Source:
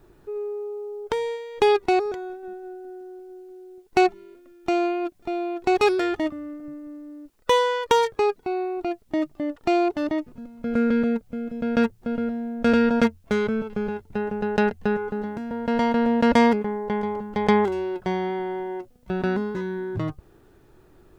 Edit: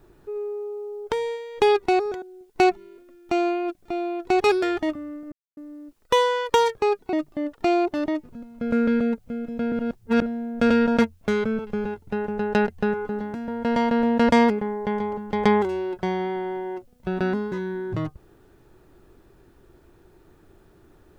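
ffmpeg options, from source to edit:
ffmpeg -i in.wav -filter_complex "[0:a]asplit=7[link_01][link_02][link_03][link_04][link_05][link_06][link_07];[link_01]atrim=end=2.222[link_08];[link_02]atrim=start=3.588:end=6.69,asetpts=PTS-STARTPTS,afade=type=out:start_time=3.098:duration=0.004:curve=hsin[link_09];[link_03]atrim=start=6.69:end=6.94,asetpts=PTS-STARTPTS,volume=0[link_10];[link_04]atrim=start=6.94:end=8.502,asetpts=PTS-STARTPTS,afade=type=in:duration=0.004:curve=hsin[link_11];[link_05]atrim=start=9.158:end=11.752[link_12];[link_06]atrim=start=11.748:end=12.252,asetpts=PTS-STARTPTS,areverse[link_13];[link_07]atrim=start=12.248[link_14];[link_09][link_10][link_11]concat=n=3:v=0:a=1[link_15];[link_08][link_15]acrossfade=duration=0.004:curve1=hsin:curve2=hsin[link_16];[link_16][link_12]acrossfade=duration=0.004:curve1=hsin:curve2=hsin[link_17];[link_17][link_13]acrossfade=duration=0.004:curve1=hsin:curve2=hsin[link_18];[link_18][link_14]acrossfade=duration=0.004:curve1=hsin:curve2=hsin" out.wav

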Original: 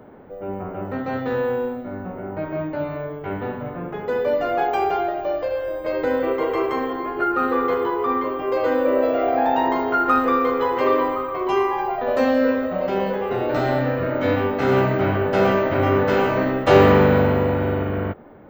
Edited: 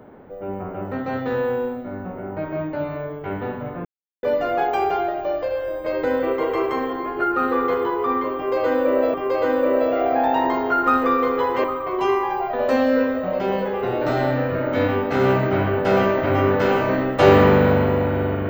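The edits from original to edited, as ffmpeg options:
ffmpeg -i in.wav -filter_complex "[0:a]asplit=5[link_01][link_02][link_03][link_04][link_05];[link_01]atrim=end=3.85,asetpts=PTS-STARTPTS,afade=type=out:start_time=3.846:duration=0.004:curve=hsin[link_06];[link_02]atrim=start=3.85:end=4.23,asetpts=PTS-STARTPTS,volume=0[link_07];[link_03]atrim=start=4.23:end=9.142,asetpts=PTS-STARTPTS,afade=type=in:duration=0.004:curve=hsin[link_08];[link_04]atrim=start=8.358:end=10.862[link_09];[link_05]atrim=start=11.118[link_10];[link_06][link_07][link_08]concat=n=3:v=0:a=1[link_11];[link_11][link_09]acrossfade=duration=0.004:curve1=hsin:curve2=hsin[link_12];[link_12][link_10]acrossfade=duration=0.004:curve1=hsin:curve2=hsin" out.wav

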